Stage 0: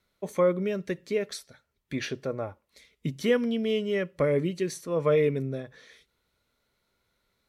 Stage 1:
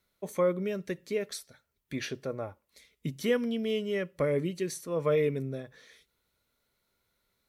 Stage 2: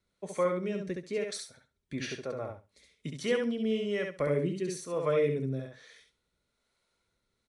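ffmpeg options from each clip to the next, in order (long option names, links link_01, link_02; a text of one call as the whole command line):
ffmpeg -i in.wav -af "highshelf=frequency=9800:gain=10.5,volume=-3.5dB" out.wav
ffmpeg -i in.wav -filter_complex "[0:a]asplit=2[link_01][link_02];[link_02]aecho=0:1:68|136|204:0.631|0.107|0.0182[link_03];[link_01][link_03]amix=inputs=2:normalize=0,aresample=22050,aresample=44100,acrossover=split=450[link_04][link_05];[link_04]aeval=exprs='val(0)*(1-0.5/2+0.5/2*cos(2*PI*1.1*n/s))':channel_layout=same[link_06];[link_05]aeval=exprs='val(0)*(1-0.5/2-0.5/2*cos(2*PI*1.1*n/s))':channel_layout=same[link_07];[link_06][link_07]amix=inputs=2:normalize=0" out.wav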